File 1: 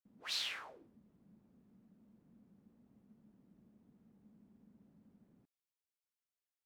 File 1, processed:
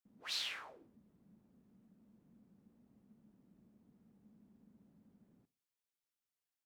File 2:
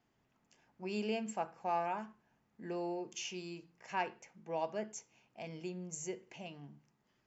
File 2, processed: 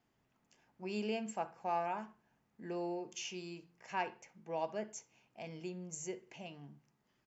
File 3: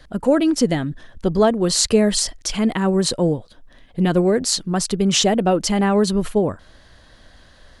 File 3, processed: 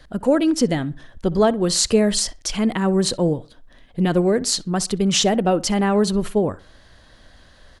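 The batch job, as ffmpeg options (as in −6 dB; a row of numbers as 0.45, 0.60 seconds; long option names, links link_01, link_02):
-filter_complex "[0:a]asplit=2[link_01][link_02];[link_02]adelay=63,lowpass=frequency=2700:poles=1,volume=-20dB,asplit=2[link_03][link_04];[link_04]adelay=63,lowpass=frequency=2700:poles=1,volume=0.33,asplit=2[link_05][link_06];[link_06]adelay=63,lowpass=frequency=2700:poles=1,volume=0.33[link_07];[link_01][link_03][link_05][link_07]amix=inputs=4:normalize=0,volume=-1dB"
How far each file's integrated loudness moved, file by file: −1.0, −1.0, −1.0 LU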